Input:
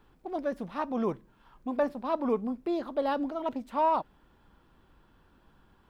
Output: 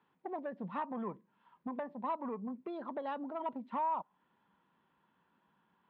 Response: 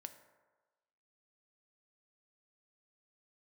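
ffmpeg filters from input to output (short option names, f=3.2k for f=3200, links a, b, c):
-af "aemphasis=mode=production:type=75fm,afftdn=nr=14:nf=-42,acompressor=threshold=-38dB:ratio=12,asoftclip=type=tanh:threshold=-33.5dB,highpass=f=120:w=0.5412,highpass=f=120:w=1.3066,equalizer=f=120:t=q:w=4:g=-7,equalizer=f=190:t=q:w=4:g=6,equalizer=f=320:t=q:w=4:g=-3,equalizer=f=970:t=q:w=4:g=8,equalizer=f=1.9k:t=q:w=4:g=4,lowpass=f=3.2k:w=0.5412,lowpass=f=3.2k:w=1.3066,volume=2dB"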